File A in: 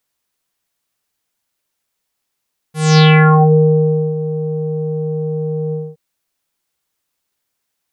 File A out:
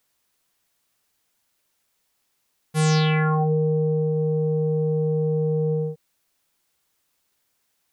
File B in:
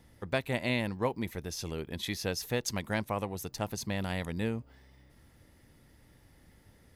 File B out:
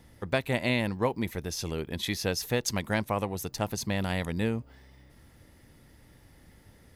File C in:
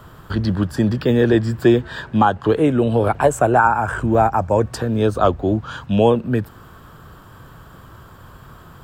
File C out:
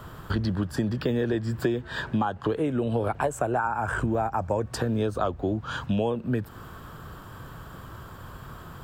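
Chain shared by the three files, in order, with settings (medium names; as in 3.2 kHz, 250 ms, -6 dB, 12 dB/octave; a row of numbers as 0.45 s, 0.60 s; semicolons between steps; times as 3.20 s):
compression 6:1, threshold -23 dBFS; peak normalisation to -12 dBFS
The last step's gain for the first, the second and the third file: +3.0 dB, +4.0 dB, 0.0 dB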